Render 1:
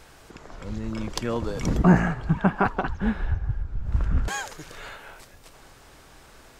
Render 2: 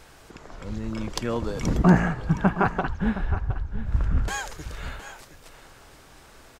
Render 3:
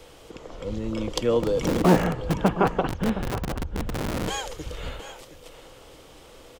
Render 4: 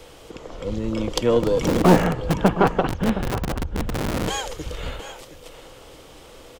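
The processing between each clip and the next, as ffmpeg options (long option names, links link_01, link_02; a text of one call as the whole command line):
ffmpeg -i in.wav -af "aecho=1:1:716:0.211" out.wav
ffmpeg -i in.wav -filter_complex "[0:a]equalizer=frequency=315:width_type=o:width=0.33:gain=5,equalizer=frequency=500:width_type=o:width=0.33:gain=12,equalizer=frequency=1600:width_type=o:width=0.33:gain=-7,equalizer=frequency=3150:width_type=o:width=0.33:gain=7,acrossover=split=150|880|1900[link_01][link_02][link_03][link_04];[link_01]aeval=exprs='(mod(15.8*val(0)+1,2)-1)/15.8':channel_layout=same[link_05];[link_05][link_02][link_03][link_04]amix=inputs=4:normalize=0" out.wav
ffmpeg -i in.wav -af "aeval=exprs='0.531*(cos(1*acos(clip(val(0)/0.531,-1,1)))-cos(1*PI/2))+0.0299*(cos(6*acos(clip(val(0)/0.531,-1,1)))-cos(6*PI/2))':channel_layout=same,volume=3.5dB" out.wav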